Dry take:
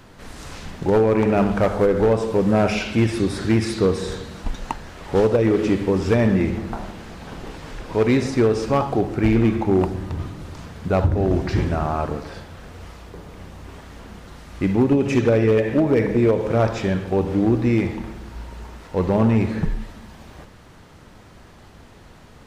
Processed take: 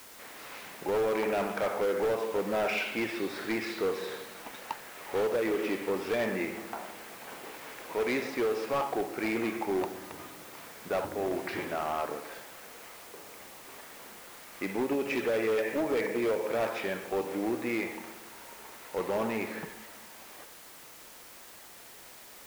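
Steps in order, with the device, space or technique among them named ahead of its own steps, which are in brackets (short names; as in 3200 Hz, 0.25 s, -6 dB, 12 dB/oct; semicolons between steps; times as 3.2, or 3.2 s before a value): drive-through speaker (BPF 430–3800 Hz; bell 2200 Hz +4.5 dB 0.51 oct; hard clip -19 dBFS, distortion -11 dB; white noise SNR 18 dB); gain -5.5 dB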